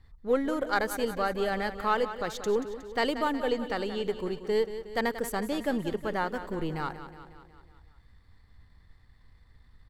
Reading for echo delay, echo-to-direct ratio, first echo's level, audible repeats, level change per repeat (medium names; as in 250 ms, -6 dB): 182 ms, -10.0 dB, -12.0 dB, 5, -4.5 dB